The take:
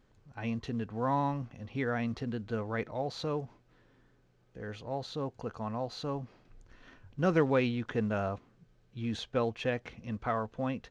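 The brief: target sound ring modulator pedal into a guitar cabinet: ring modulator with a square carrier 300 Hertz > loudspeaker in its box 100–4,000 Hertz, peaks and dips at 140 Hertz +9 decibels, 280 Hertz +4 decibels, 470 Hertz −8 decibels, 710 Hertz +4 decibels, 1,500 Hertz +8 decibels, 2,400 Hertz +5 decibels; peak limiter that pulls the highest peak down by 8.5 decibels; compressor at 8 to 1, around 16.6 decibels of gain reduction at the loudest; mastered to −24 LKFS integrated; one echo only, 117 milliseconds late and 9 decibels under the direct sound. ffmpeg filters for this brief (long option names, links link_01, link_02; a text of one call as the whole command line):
ffmpeg -i in.wav -af "acompressor=threshold=-40dB:ratio=8,alimiter=level_in=13.5dB:limit=-24dB:level=0:latency=1,volume=-13.5dB,aecho=1:1:117:0.355,aeval=exprs='val(0)*sgn(sin(2*PI*300*n/s))':channel_layout=same,highpass=100,equalizer=frequency=140:width_type=q:width=4:gain=9,equalizer=frequency=280:width_type=q:width=4:gain=4,equalizer=frequency=470:width_type=q:width=4:gain=-8,equalizer=frequency=710:width_type=q:width=4:gain=4,equalizer=frequency=1500:width_type=q:width=4:gain=8,equalizer=frequency=2400:width_type=q:width=4:gain=5,lowpass=frequency=4000:width=0.5412,lowpass=frequency=4000:width=1.3066,volume=21.5dB" out.wav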